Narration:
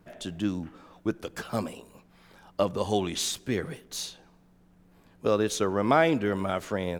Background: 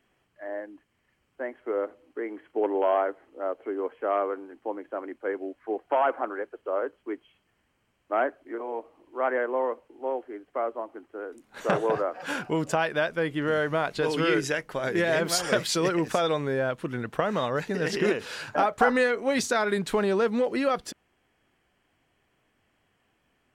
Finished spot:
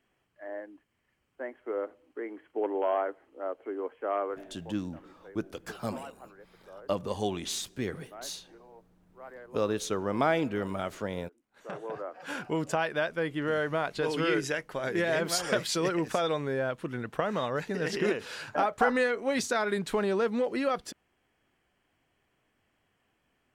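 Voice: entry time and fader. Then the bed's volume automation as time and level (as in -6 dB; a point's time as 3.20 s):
4.30 s, -4.5 dB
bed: 4.34 s -4.5 dB
4.92 s -20.5 dB
11.39 s -20.5 dB
12.47 s -3.5 dB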